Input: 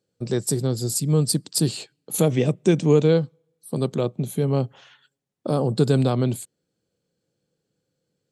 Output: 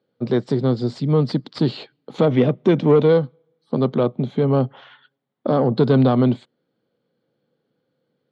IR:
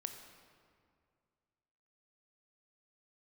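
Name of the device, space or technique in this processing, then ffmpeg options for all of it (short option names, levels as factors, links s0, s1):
overdrive pedal into a guitar cabinet: -filter_complex "[0:a]asplit=2[s0][s1];[s1]highpass=f=720:p=1,volume=6.31,asoftclip=type=tanh:threshold=0.531[s2];[s0][s2]amix=inputs=2:normalize=0,lowpass=f=2900:p=1,volume=0.501,highpass=92,equalizer=f=130:t=q:w=4:g=6,equalizer=f=240:t=q:w=4:g=8,equalizer=f=1700:t=q:w=4:g=-4,equalizer=f=2600:t=q:w=4:g=-9,lowpass=f=3600:w=0.5412,lowpass=f=3600:w=1.3066"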